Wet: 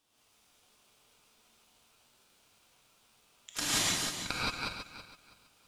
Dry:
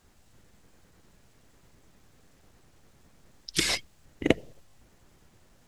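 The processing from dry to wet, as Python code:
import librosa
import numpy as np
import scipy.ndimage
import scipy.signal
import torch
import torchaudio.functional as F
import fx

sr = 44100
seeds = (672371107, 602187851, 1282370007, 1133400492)

y = fx.reverse_delay_fb(x, sr, ms=163, feedback_pct=50, wet_db=-4)
y = scipy.signal.sosfilt(scipy.signal.butter(2, 750.0, 'highpass', fs=sr, output='sos'), y)
y = fx.rev_gated(y, sr, seeds[0], gate_ms=200, shape='rising', drr_db=-7.5)
y = y * np.sin(2.0 * np.pi * 1900.0 * np.arange(len(y)) / sr)
y = y * 10.0 ** (-6.5 / 20.0)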